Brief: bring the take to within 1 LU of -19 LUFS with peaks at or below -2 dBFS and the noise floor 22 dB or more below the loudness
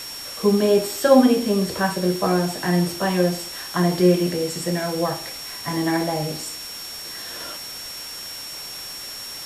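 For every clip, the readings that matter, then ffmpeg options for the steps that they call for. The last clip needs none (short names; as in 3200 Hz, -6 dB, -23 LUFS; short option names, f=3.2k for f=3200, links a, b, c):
steady tone 5500 Hz; tone level -34 dBFS; noise floor -35 dBFS; noise floor target -45 dBFS; loudness -22.5 LUFS; peak -2.0 dBFS; loudness target -19.0 LUFS
-> -af "bandreject=f=5.5k:w=30"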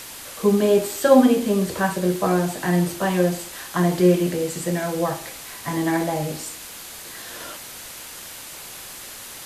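steady tone none; noise floor -38 dBFS; noise floor target -43 dBFS
-> -af "afftdn=nr=6:nf=-38"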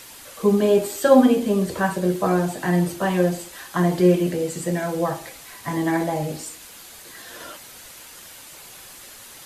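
noise floor -43 dBFS; loudness -21.0 LUFS; peak -2.5 dBFS; loudness target -19.0 LUFS
-> -af "volume=2dB,alimiter=limit=-2dB:level=0:latency=1"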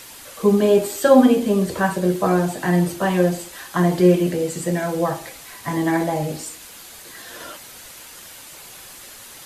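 loudness -19.0 LUFS; peak -2.0 dBFS; noise floor -41 dBFS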